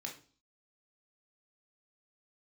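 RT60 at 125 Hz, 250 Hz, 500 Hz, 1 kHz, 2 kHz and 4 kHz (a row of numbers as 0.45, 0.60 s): 0.50, 0.50, 0.45, 0.40, 0.35, 0.45 s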